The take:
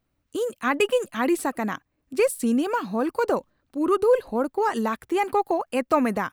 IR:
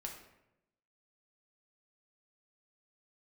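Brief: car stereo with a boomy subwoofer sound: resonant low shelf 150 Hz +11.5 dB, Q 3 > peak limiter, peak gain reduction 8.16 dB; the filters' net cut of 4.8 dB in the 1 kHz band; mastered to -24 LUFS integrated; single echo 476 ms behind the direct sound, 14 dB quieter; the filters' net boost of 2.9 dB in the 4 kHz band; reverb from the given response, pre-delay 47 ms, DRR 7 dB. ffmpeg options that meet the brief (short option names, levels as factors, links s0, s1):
-filter_complex "[0:a]equalizer=f=1000:t=o:g=-6,equalizer=f=4000:t=o:g=5,aecho=1:1:476:0.2,asplit=2[s0][s1];[1:a]atrim=start_sample=2205,adelay=47[s2];[s1][s2]afir=irnorm=-1:irlink=0,volume=0.562[s3];[s0][s3]amix=inputs=2:normalize=0,lowshelf=f=150:t=q:w=3:g=11.5,volume=1.78,alimiter=limit=0.211:level=0:latency=1"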